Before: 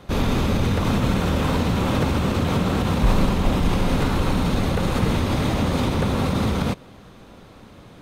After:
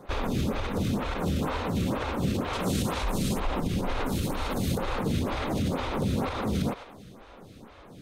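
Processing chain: 4.06–4.78 s: treble shelf 5.9 kHz +10 dB; thinning echo 103 ms, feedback 54%, level -14.5 dB; peak limiter -16.5 dBFS, peak gain reduction 10 dB; 2.53–3.40 s: peaking EQ 9 kHz +11.5 dB 2.1 oct; lamp-driven phase shifter 2.1 Hz

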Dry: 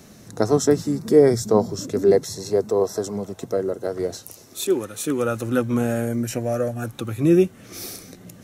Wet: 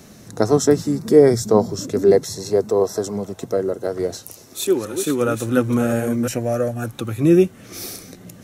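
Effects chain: 4.14–6.28 s: chunks repeated in reverse 357 ms, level -8 dB; trim +2.5 dB

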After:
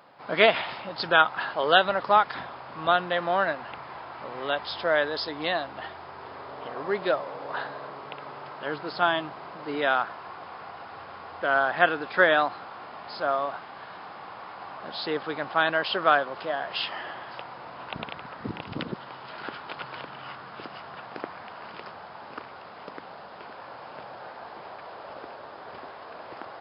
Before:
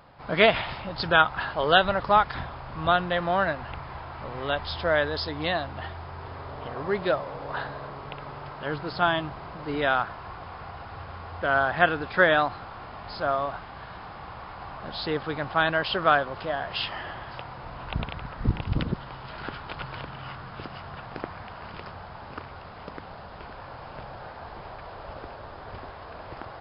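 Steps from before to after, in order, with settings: high-pass 250 Hz 12 dB/octave

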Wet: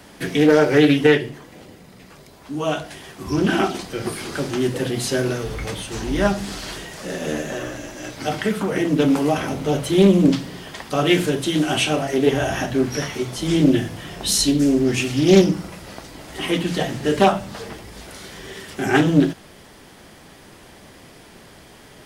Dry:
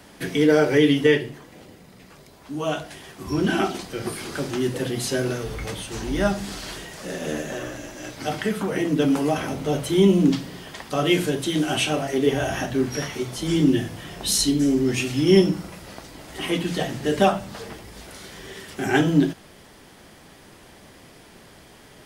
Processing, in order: loudspeaker Doppler distortion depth 0.31 ms; trim +3 dB

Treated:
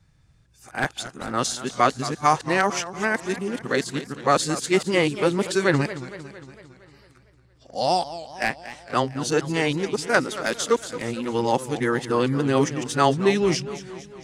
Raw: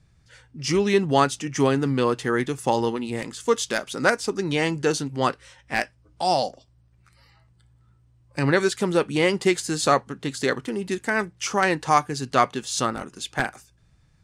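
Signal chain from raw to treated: reverse the whole clip; modulated delay 228 ms, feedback 58%, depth 182 cents, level -14 dB

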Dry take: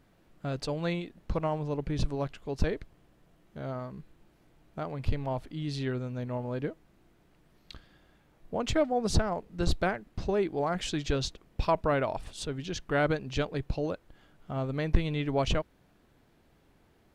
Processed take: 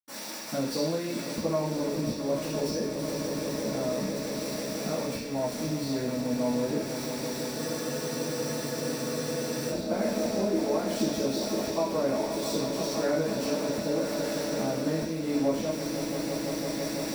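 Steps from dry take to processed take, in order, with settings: zero-crossing glitches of -18 dBFS; transient shaper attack +3 dB, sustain +8 dB; treble shelf 6.1 kHz -11.5 dB; echo with a slow build-up 167 ms, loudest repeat 5, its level -14 dB; compression 6:1, threshold -31 dBFS, peak gain reduction 18.5 dB; bass shelf 83 Hz -11.5 dB; reverberation, pre-delay 76 ms; spectral freeze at 7.60 s, 2.11 s

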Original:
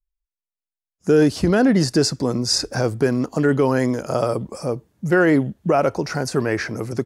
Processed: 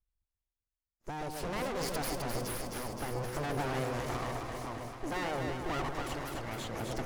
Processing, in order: full-wave rectifier; compression, threshold -21 dBFS, peak gain reduction 10 dB; tremolo 0.55 Hz, depth 76%; valve stage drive 20 dB, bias 0.6; on a send: echo whose repeats swap between lows and highs 130 ms, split 1 kHz, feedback 84%, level -3.5 dB; on the sum: tape noise reduction on one side only decoder only; trim +3 dB

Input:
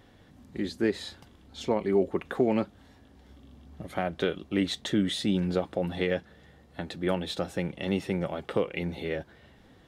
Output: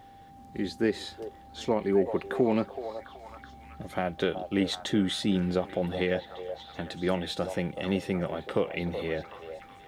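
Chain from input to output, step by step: word length cut 12-bit, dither none; repeats whose band climbs or falls 376 ms, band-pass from 640 Hz, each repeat 0.7 oct, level -6 dB; whistle 790 Hz -50 dBFS

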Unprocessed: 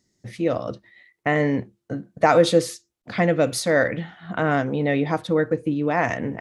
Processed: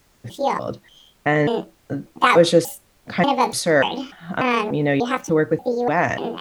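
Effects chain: pitch shift switched off and on +8.5 st, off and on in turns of 294 ms; added noise pink -61 dBFS; trim +2.5 dB

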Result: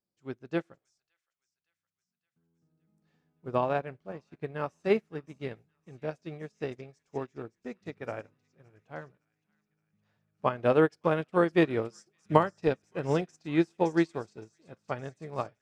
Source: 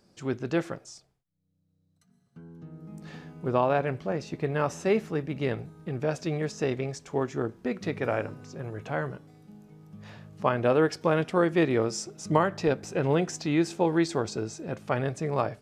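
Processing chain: on a send: feedback echo behind a high-pass 566 ms, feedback 62%, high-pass 1.8 kHz, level -11 dB; on the sum: upward expansion 2.5:1, over -40 dBFS; trim +3 dB

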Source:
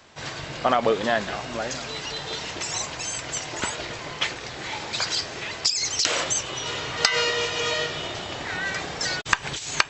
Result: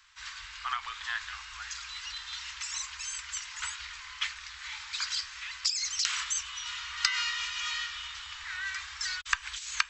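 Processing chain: inverse Chebyshev band-stop 120–630 Hz, stop band 40 dB; peaking EQ 750 Hz -5.5 dB 0.25 oct; trim -6.5 dB

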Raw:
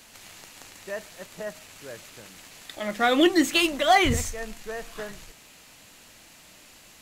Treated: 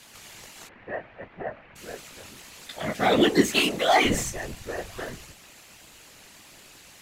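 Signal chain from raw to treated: 0.67–1.76 s: low-pass 2.2 kHz 24 dB/octave; chorus 1.5 Hz, delay 15 ms, depth 6.8 ms; whisper effect; in parallel at -4 dB: saturation -24 dBFS, distortion -7 dB

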